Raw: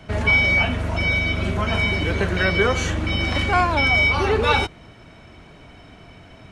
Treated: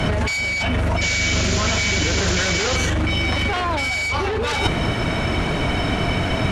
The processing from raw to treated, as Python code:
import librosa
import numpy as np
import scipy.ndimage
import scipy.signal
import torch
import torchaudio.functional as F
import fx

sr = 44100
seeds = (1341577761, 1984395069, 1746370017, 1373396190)

y = fx.fold_sine(x, sr, drive_db=10, ceiling_db=-5.0)
y = fx.over_compress(y, sr, threshold_db=-20.0, ratio=-1.0)
y = fx.spec_paint(y, sr, seeds[0], shape='noise', start_s=1.01, length_s=1.76, low_hz=1300.0, high_hz=7400.0, level_db=-26.0)